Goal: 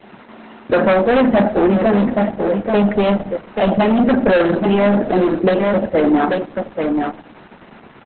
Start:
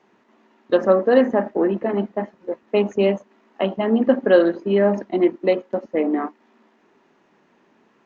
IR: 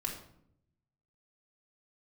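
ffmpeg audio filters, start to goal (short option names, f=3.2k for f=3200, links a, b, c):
-filter_complex "[0:a]bass=f=250:g=13,treble=f=4k:g=6,aecho=1:1:1.4:0.33,bandreject=f=157.9:t=h:w=4,bandreject=f=315.8:t=h:w=4,bandreject=f=473.7:t=h:w=4,bandreject=f=631.6:t=h:w=4,bandreject=f=789.5:t=h:w=4,adynamicequalizer=threshold=0.0158:dfrequency=1000:dqfactor=2.8:tfrequency=1000:tqfactor=2.8:attack=5:release=100:ratio=0.375:range=2:mode=cutabove:tftype=bell,acontrast=83,asplit=2[a][b];[b]highpass=f=720:p=1,volume=12dB,asoftclip=type=tanh:threshold=0dB[c];[a][c]amix=inputs=2:normalize=0,lowpass=f=2.7k:p=1,volume=-6dB,asoftclip=type=hard:threshold=-9.5dB,aecho=1:1:835:0.251,asplit=2[d][e];[1:a]atrim=start_sample=2205[f];[e][f]afir=irnorm=-1:irlink=0,volume=-17.5dB[g];[d][g]amix=inputs=2:normalize=0,aresample=32000,aresample=44100,alimiter=level_in=14dB:limit=-1dB:release=50:level=0:latency=1,volume=-7dB" -ar 48000 -c:a libopus -b:a 8k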